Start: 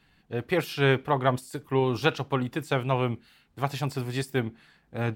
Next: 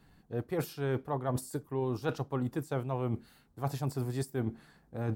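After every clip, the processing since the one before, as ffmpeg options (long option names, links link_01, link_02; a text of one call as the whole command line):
ffmpeg -i in.wav -af "equalizer=frequency=2700:width_type=o:width=1.6:gain=-13.5,areverse,acompressor=threshold=-34dB:ratio=6,areverse,volume=4dB" out.wav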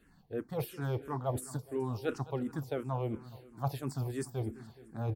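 ffmpeg -i in.wav -filter_complex "[0:a]aecho=1:1:210|420|630|840|1050:0.141|0.0791|0.0443|0.0248|0.0139,asplit=2[link_01][link_02];[link_02]afreqshift=-2.9[link_03];[link_01][link_03]amix=inputs=2:normalize=1,volume=1dB" out.wav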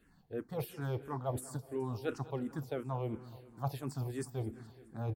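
ffmpeg -i in.wav -filter_complex "[0:a]asplit=2[link_01][link_02];[link_02]adelay=182,lowpass=frequency=3900:poles=1,volume=-22dB,asplit=2[link_03][link_04];[link_04]adelay=182,lowpass=frequency=3900:poles=1,volume=0.52,asplit=2[link_05][link_06];[link_06]adelay=182,lowpass=frequency=3900:poles=1,volume=0.52,asplit=2[link_07][link_08];[link_08]adelay=182,lowpass=frequency=3900:poles=1,volume=0.52[link_09];[link_01][link_03][link_05][link_07][link_09]amix=inputs=5:normalize=0,volume=-2.5dB" out.wav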